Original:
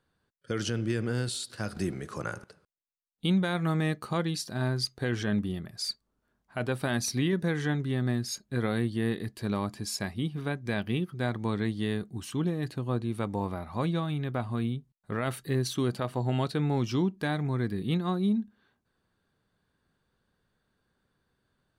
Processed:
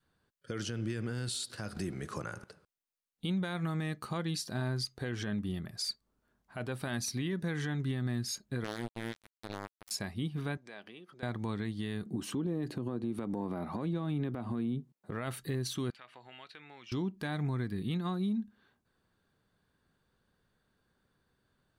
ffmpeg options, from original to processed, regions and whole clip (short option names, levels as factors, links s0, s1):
-filter_complex "[0:a]asettb=1/sr,asplit=3[s0][s1][s2];[s0]atrim=end=8.644[s3];[s1]atrim=start=8.64:end=9.91,asetpts=PTS-STARTPTS,afade=t=in:d=0.004:c=qsin,afade=t=out:st=1.266:d=0.004:c=qsin,equalizer=f=170:t=o:w=0.58:g=-3.5,acrusher=bits=3:mix=0:aa=0.5[s4];[s2]atrim=start=9.906[s5];[s3][s4]acrossfade=d=0.004:c1=hsin:c2=qsin[s6];[s6][s5]acrossfade=d=0.004:c1=qsin:c2=hsin,asettb=1/sr,asplit=3[s7][s8][s9];[s7]atrim=end=10.574[s10];[s8]atrim=start=10.57:end=11.23,asetpts=PTS-STARTPTS,afade=t=in:d=0.004:c=qsin,afade=t=out:st=0.656:d=0.004:c=qsin,acompressor=threshold=0.00891:ratio=6:attack=3.2:release=140:knee=1:detection=peak,highpass=390,lowpass=7900[s11];[s9]atrim=start=11.226[s12];[s10][s11]acrossfade=d=0.004:c1=hsin:c2=qsin[s13];[s13][s12]acrossfade=d=0.004:c1=qsin:c2=hsin,asettb=1/sr,asplit=3[s14][s15][s16];[s14]atrim=end=12.064[s17];[s15]atrim=start=12.06:end=15.11,asetpts=PTS-STARTPTS,afade=t=in:d=0.004:c=qsin,afade=t=out:st=3.046:d=0.004:c=qsin,highpass=140,equalizer=f=320:t=o:w=2.8:g=13.5,acompressor=threshold=0.0501:ratio=3:attack=3.2:release=140:knee=1:detection=peak[s18];[s16]atrim=start=15.106[s19];[s17][s18]acrossfade=d=0.004:c1=hsin:c2=qsin[s20];[s20][s19]acrossfade=d=0.004:c1=qsin:c2=hsin,asettb=1/sr,asplit=3[s21][s22][s23];[s21]atrim=end=15.904[s24];[s22]atrim=start=15.9:end=16.92,asetpts=PTS-STARTPTS,afade=t=in:d=0.004:c=qsin,afade=t=out:st=1.016:d=0.004:c=qsin,bandpass=f=2300:t=q:w=1.8,acompressor=threshold=0.00282:ratio=2:attack=3.2:release=140:knee=1:detection=peak[s25];[s23]atrim=start=16.916[s26];[s24][s25]acrossfade=d=0.004:c1=hsin:c2=qsin[s27];[s27][s26]acrossfade=d=0.004:c1=qsin:c2=hsin,adynamicequalizer=threshold=0.00794:dfrequency=500:dqfactor=1:tfrequency=500:tqfactor=1:attack=5:release=100:ratio=0.375:range=2.5:mode=cutabove:tftype=bell,alimiter=level_in=1.33:limit=0.0631:level=0:latency=1:release=168,volume=0.75"